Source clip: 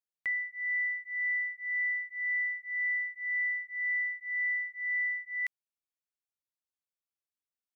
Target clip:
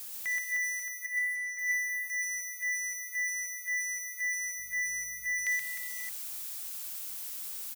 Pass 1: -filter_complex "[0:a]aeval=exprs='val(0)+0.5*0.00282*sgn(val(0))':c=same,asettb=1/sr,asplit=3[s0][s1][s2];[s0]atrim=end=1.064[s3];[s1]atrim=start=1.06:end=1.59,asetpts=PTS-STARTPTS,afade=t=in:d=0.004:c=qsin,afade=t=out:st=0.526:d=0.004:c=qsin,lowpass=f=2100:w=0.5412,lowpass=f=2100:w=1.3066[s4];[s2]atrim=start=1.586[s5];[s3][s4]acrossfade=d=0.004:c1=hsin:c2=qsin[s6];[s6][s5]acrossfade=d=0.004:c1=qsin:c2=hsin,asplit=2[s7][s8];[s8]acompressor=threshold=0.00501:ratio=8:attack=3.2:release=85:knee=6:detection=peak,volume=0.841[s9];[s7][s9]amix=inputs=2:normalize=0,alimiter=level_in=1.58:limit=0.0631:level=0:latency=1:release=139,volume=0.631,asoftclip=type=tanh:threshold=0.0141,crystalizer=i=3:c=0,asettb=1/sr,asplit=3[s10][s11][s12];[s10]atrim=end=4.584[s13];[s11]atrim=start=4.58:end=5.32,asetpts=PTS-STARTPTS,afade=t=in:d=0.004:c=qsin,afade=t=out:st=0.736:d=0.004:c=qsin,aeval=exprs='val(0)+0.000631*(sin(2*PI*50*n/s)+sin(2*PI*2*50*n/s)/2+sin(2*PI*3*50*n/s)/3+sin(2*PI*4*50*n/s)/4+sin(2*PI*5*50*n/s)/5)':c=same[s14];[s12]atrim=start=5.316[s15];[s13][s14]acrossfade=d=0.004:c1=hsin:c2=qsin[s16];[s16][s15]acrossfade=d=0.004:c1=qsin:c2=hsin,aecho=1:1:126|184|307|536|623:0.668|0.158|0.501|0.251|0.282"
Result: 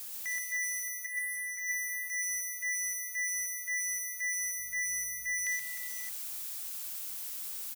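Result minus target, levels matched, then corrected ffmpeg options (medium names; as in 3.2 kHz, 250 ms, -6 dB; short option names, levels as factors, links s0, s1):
saturation: distortion +8 dB
-filter_complex "[0:a]aeval=exprs='val(0)+0.5*0.00282*sgn(val(0))':c=same,asettb=1/sr,asplit=3[s0][s1][s2];[s0]atrim=end=1.064[s3];[s1]atrim=start=1.06:end=1.59,asetpts=PTS-STARTPTS,afade=t=in:d=0.004:c=qsin,afade=t=out:st=0.526:d=0.004:c=qsin,lowpass=f=2100:w=0.5412,lowpass=f=2100:w=1.3066[s4];[s2]atrim=start=1.586[s5];[s3][s4]acrossfade=d=0.004:c1=hsin:c2=qsin[s6];[s6][s5]acrossfade=d=0.004:c1=qsin:c2=hsin,asplit=2[s7][s8];[s8]acompressor=threshold=0.00501:ratio=8:attack=3.2:release=85:knee=6:detection=peak,volume=0.841[s9];[s7][s9]amix=inputs=2:normalize=0,alimiter=level_in=1.58:limit=0.0631:level=0:latency=1:release=139,volume=0.631,asoftclip=type=tanh:threshold=0.0316,crystalizer=i=3:c=0,asettb=1/sr,asplit=3[s10][s11][s12];[s10]atrim=end=4.584[s13];[s11]atrim=start=4.58:end=5.32,asetpts=PTS-STARTPTS,afade=t=in:d=0.004:c=qsin,afade=t=out:st=0.736:d=0.004:c=qsin,aeval=exprs='val(0)+0.000631*(sin(2*PI*50*n/s)+sin(2*PI*2*50*n/s)/2+sin(2*PI*3*50*n/s)/3+sin(2*PI*4*50*n/s)/4+sin(2*PI*5*50*n/s)/5)':c=same[s14];[s12]atrim=start=5.316[s15];[s13][s14]acrossfade=d=0.004:c1=hsin:c2=qsin[s16];[s16][s15]acrossfade=d=0.004:c1=qsin:c2=hsin,aecho=1:1:126|184|307|536|623:0.668|0.158|0.501|0.251|0.282"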